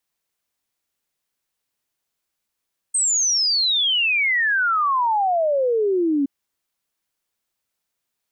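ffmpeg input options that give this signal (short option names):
-f lavfi -i "aevalsrc='0.15*clip(min(t,3.32-t)/0.01,0,1)*sin(2*PI*8500*3.32/log(270/8500)*(exp(log(270/8500)*t/3.32)-1))':d=3.32:s=44100"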